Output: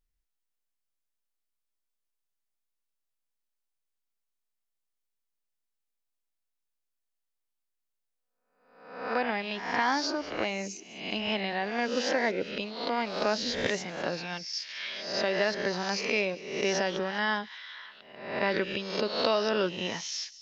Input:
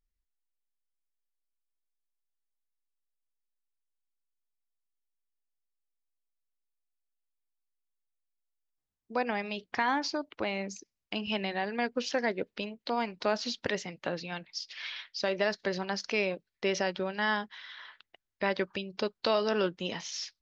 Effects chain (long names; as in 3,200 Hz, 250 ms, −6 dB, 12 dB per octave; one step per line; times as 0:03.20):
peak hold with a rise ahead of every peak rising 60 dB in 0.77 s
delay with a high-pass on its return 200 ms, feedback 42%, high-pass 4,000 Hz, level −15 dB